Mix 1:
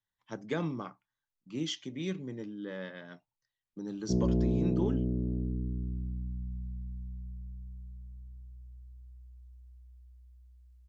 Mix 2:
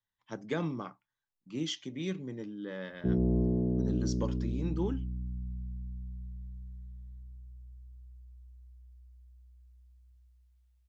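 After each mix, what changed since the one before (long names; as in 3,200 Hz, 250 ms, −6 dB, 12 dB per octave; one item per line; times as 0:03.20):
background: entry −1.05 s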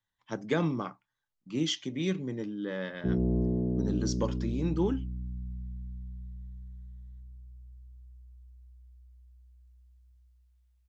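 speech +5.0 dB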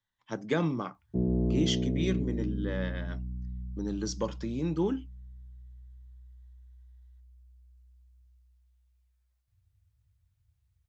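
background: entry −1.90 s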